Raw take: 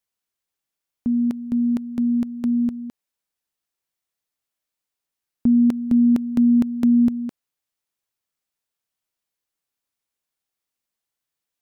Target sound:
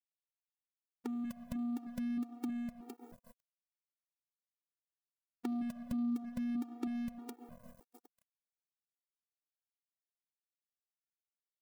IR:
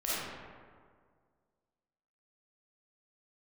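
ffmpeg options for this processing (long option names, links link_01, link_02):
-filter_complex "[0:a]crystalizer=i=2:c=0,aeval=exprs='0.531*sin(PI/2*1.41*val(0)/0.531)':channel_layout=same,asplit=2[link_01][link_02];[link_02]lowpass=frequency=1100:poles=1[link_03];[1:a]atrim=start_sample=2205[link_04];[link_03][link_04]afir=irnorm=-1:irlink=0,volume=-17.5dB[link_05];[link_01][link_05]amix=inputs=2:normalize=0,aphaser=in_gain=1:out_gain=1:delay=4.2:decay=0.5:speed=0.24:type=triangular,acompressor=threshold=-37dB:ratio=3,aeval=exprs='sgn(val(0))*max(abs(val(0))-0.00631,0)':channel_layout=same,acompressor=mode=upward:threshold=-41dB:ratio=2.5,afftfilt=real='re*gt(sin(2*PI*1.6*pts/sr)*(1-2*mod(floor(b*sr/1024/240),2)),0)':imag='im*gt(sin(2*PI*1.6*pts/sr)*(1-2*mod(floor(b*sr/1024/240),2)),0)':win_size=1024:overlap=0.75"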